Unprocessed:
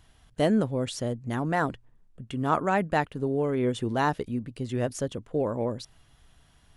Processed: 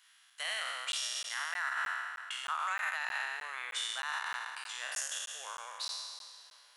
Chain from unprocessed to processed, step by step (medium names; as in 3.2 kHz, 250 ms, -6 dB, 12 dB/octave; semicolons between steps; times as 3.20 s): spectral sustain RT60 1.81 s; high-pass 1.3 kHz 24 dB/octave; peak limiter -25 dBFS, peak gain reduction 11 dB; on a send: tape echo 515 ms, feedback 52%, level -17.5 dB, low-pass 1.9 kHz; on the sum: crackling interface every 0.31 s, samples 512, zero, from 0.92 s